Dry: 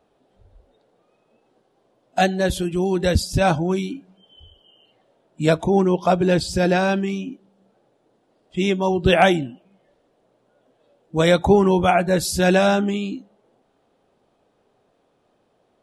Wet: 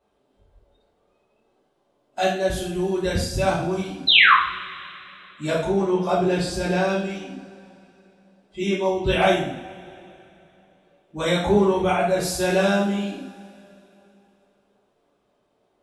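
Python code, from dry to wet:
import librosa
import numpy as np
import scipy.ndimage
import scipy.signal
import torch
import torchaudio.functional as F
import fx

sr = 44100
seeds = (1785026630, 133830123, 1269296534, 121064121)

y = fx.spec_paint(x, sr, seeds[0], shape='fall', start_s=4.07, length_s=0.27, low_hz=980.0, high_hz=4200.0, level_db=-10.0)
y = fx.rev_double_slope(y, sr, seeds[1], early_s=0.55, late_s=3.1, knee_db=-21, drr_db=-7.5)
y = F.gain(torch.from_numpy(y), -11.0).numpy()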